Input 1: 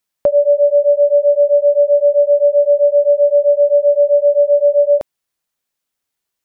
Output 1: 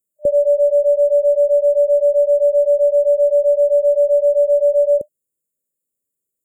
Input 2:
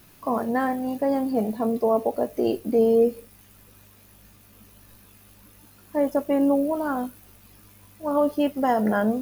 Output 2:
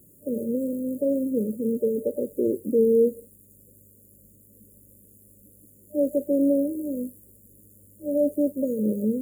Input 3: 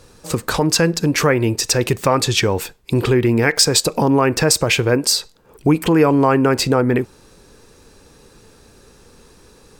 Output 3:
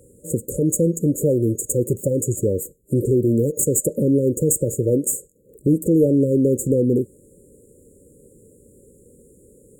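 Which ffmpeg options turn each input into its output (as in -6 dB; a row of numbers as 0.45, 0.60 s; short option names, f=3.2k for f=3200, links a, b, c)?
-af "aeval=exprs='clip(val(0),-1,0.2)':c=same,afftfilt=real='re*(1-between(b*sr/4096,600,6700))':imag='im*(1-between(b*sr/4096,600,6700))':win_size=4096:overlap=0.75,highpass=f=99:p=1"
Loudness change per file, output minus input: -2.5, -1.5, -3.5 LU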